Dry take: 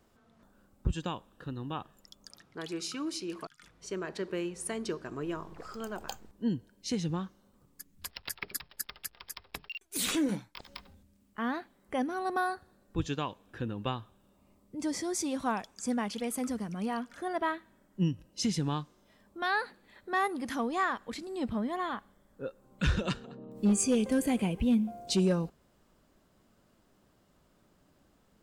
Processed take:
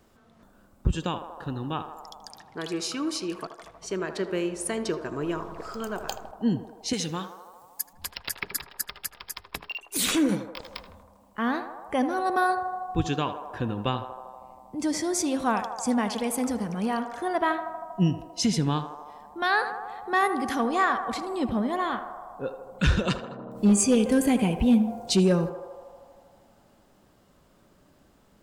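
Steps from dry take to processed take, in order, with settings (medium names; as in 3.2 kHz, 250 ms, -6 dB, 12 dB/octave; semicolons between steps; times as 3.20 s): 6.93–7.93 s: tilt EQ +3 dB/octave; band-passed feedback delay 79 ms, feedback 85%, band-pass 760 Hz, level -8.5 dB; trim +6 dB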